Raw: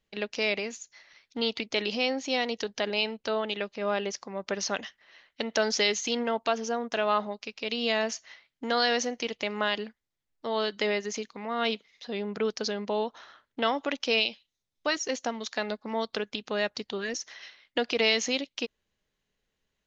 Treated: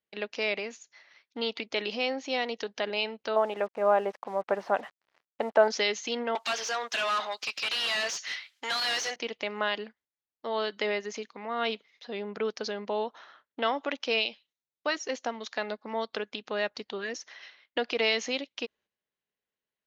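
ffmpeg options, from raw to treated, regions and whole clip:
-filter_complex "[0:a]asettb=1/sr,asplit=3[s0][s1][s2];[s0]atrim=end=3.364[s3];[s1]atrim=start=3.36:end=5.68,asetpts=PTS-STARTPTS,afade=t=in:d=0.004:c=qsin,afade=t=out:st=2.316:d=0.004:c=qsin,lowpass=1700,equalizer=f=780:t=o:w=1.3:g=10,acrusher=bits=7:mix=0:aa=0.5[s4];[s2]atrim=start=5.676[s5];[s3][s4]acrossfade=d=0.004:c1=hsin:c2=qsin[s6];[s6][s5]acrossfade=d=0.004:c1=qsin:c2=hsin,asettb=1/sr,asplit=3[s7][s8][s9];[s7]atrim=end=6.354[s10];[s8]atrim=start=6.35:end=9.16,asetpts=PTS-STARTPTS,afade=t=in:d=0.004:c=qsin,afade=t=out:st=2.806:d=0.004:c=qsin,aderivative,asplit=2[s11][s12];[s12]highpass=f=720:p=1,volume=56.2,asoftclip=type=tanh:threshold=0.112[s13];[s11][s13]amix=inputs=2:normalize=0,lowpass=f=6000:p=1,volume=0.501[s14];[s9]atrim=start=9.156[s15];[s10][s14]acrossfade=d=0.004:c1=hsin:c2=qsin[s16];[s16][s15]acrossfade=d=0.004:c1=qsin:c2=hsin,agate=range=0.355:threshold=0.00126:ratio=16:detection=peak,highpass=f=360:p=1,aemphasis=mode=reproduction:type=50fm"

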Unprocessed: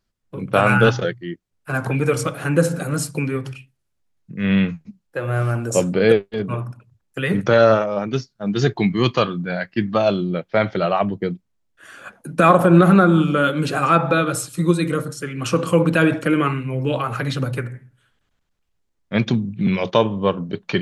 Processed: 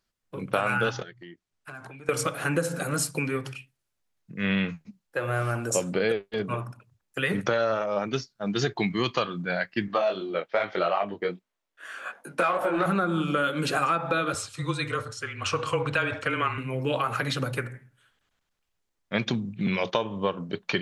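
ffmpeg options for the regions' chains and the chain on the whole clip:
-filter_complex "[0:a]asettb=1/sr,asplit=3[s0][s1][s2];[s0]atrim=end=1.024[s3];[s1]atrim=start=1.02:end=2.09,asetpts=PTS-STARTPTS,afade=t=in:d=0.004:c=qsin,afade=t=out:st=1.066:d=0.004:c=qsin,lowpass=9000,bandreject=f=510:w=6.6,acompressor=threshold=0.0178:ratio=16:attack=3.2:release=140:knee=1:detection=peak[s4];[s2]atrim=start=2.086[s5];[s3][s4]acrossfade=d=0.004:c1=hsin:c2=qsin[s6];[s6][s5]acrossfade=d=0.004:c1=qsin:c2=hsin,asettb=1/sr,asplit=3[s7][s8][s9];[s7]atrim=end=9.884[s10];[s8]atrim=start=9.88:end=12.86,asetpts=PTS-STARTPTS,afade=t=in:d=0.004:c=qsin,afade=t=out:st=2.976:d=0.004:c=qsin,acontrast=41,bass=f=250:g=-14,treble=f=4000:g=-6,flanger=delay=19.5:depth=3.8:speed=2.5[s11];[s9]atrim=start=12.856[s12];[s10][s11]acrossfade=d=0.004:c1=hsin:c2=qsin[s13];[s13][s12]acrossfade=d=0.004:c1=qsin:c2=hsin,asettb=1/sr,asplit=3[s14][s15][s16];[s14]atrim=end=14.344[s17];[s15]atrim=start=14.34:end=16.58,asetpts=PTS-STARTPTS,afade=t=in:d=0.004:c=qsin,afade=t=out:st=2.236:d=0.004:c=qsin,lowpass=5700,equalizer=f=290:w=1.2:g=-10.5,afreqshift=-23[s18];[s16]atrim=start=16.576[s19];[s17][s18]acrossfade=d=0.004:c1=hsin:c2=qsin[s20];[s20][s19]acrossfade=d=0.004:c1=qsin:c2=hsin,lowshelf=f=390:g=-9,acompressor=threshold=0.0891:ratio=12"

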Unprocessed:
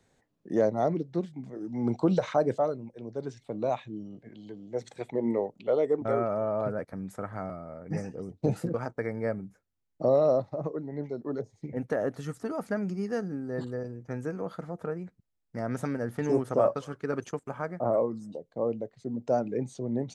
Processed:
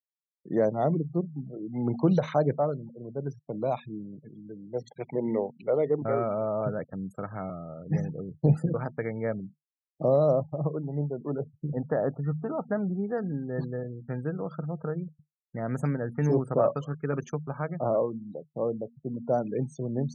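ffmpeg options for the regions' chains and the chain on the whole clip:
-filter_complex "[0:a]asettb=1/sr,asplit=3[s0][s1][s2];[s0]atrim=end=10.574[s3];[s1]atrim=start=10.57:end=13.18,asetpts=PTS-STARTPTS,afade=t=in:d=0.004:c=qsin,afade=t=out:st=2.606:d=0.004:c=qsin,lowpass=1700,adynamicequalizer=threshold=0.00708:dfrequency=780:dqfactor=1.5:tfrequency=780:tqfactor=1.5:attack=5:release=100:ratio=0.375:range=2:mode=boostabove:tftype=bell[s4];[s2]atrim=start=13.176[s5];[s3][s4]acrossfade=d=0.004:c1=hsin:c2=qsin[s6];[s6][s5]acrossfade=d=0.004:c1=qsin:c2=hsin,bandreject=f=78.26:t=h:w=4,bandreject=f=156.52:t=h:w=4,bandreject=f=234.78:t=h:w=4,afftfilt=real='re*gte(hypot(re,im),0.00631)':imag='im*gte(hypot(re,im),0.00631)':win_size=1024:overlap=0.75,equalizer=f=150:w=4.6:g=12"

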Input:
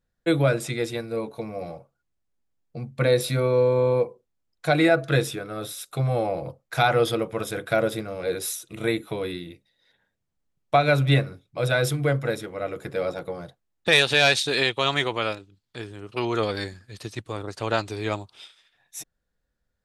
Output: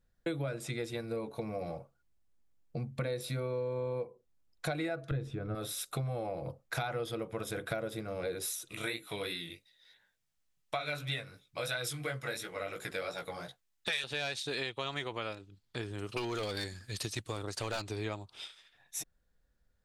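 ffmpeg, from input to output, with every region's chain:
-filter_complex "[0:a]asettb=1/sr,asplit=3[s0][s1][s2];[s0]atrim=end=5.114[s3];[s1]atrim=start=5.11:end=5.55,asetpts=PTS-STARTPTS,afade=t=in:d=0.004:c=qsin,afade=t=out:st=0.436:d=0.004:c=qsin,aemphasis=mode=reproduction:type=riaa,acompressor=threshold=0.126:ratio=1.5:attack=3.2:release=140:knee=1:detection=peak[s4];[s2]atrim=start=5.546[s5];[s3][s4]acrossfade=d=0.004:c1=hsin:c2=qsin[s6];[s6][s5]acrossfade=d=0.004:c1=qsin:c2=hsin,asettb=1/sr,asplit=3[s7][s8][s9];[s7]atrim=end=8.694[s10];[s8]atrim=start=8.69:end=14.04,asetpts=PTS-STARTPTS,afade=t=in:d=0.004:c=qsin,afade=t=out:st=5.346:d=0.004:c=qsin,tiltshelf=f=970:g=-8,flanger=delay=15.5:depth=5.3:speed=2.9[s11];[s9]atrim=start=14.036[s12];[s10][s11]acrossfade=d=0.004:c1=hsin:c2=qsin[s13];[s13][s12]acrossfade=d=0.004:c1=qsin:c2=hsin,asettb=1/sr,asplit=3[s14][s15][s16];[s14]atrim=end=15.984[s17];[s15]atrim=start=15.98:end=17.82,asetpts=PTS-STARTPTS,afade=t=in:d=0.004:c=qsin,afade=t=out:st=1.836:d=0.004:c=qsin,highshelf=f=2900:g=10,volume=10.6,asoftclip=hard,volume=0.0944[s18];[s16]atrim=start=17.816[s19];[s17][s18]acrossfade=d=0.004:c1=hsin:c2=qsin[s20];[s20][s19]acrossfade=d=0.004:c1=qsin:c2=hsin,lowshelf=f=66:g=6.5,acompressor=threshold=0.02:ratio=6"

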